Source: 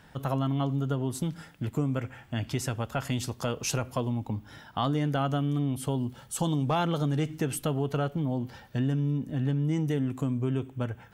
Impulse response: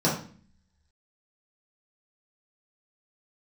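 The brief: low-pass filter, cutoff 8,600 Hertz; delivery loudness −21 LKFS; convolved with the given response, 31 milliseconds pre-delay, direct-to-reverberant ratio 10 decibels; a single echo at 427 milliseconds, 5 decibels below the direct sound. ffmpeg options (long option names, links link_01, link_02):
-filter_complex "[0:a]lowpass=8600,aecho=1:1:427:0.562,asplit=2[link_01][link_02];[1:a]atrim=start_sample=2205,adelay=31[link_03];[link_02][link_03]afir=irnorm=-1:irlink=0,volume=-24dB[link_04];[link_01][link_04]amix=inputs=2:normalize=0,volume=5.5dB"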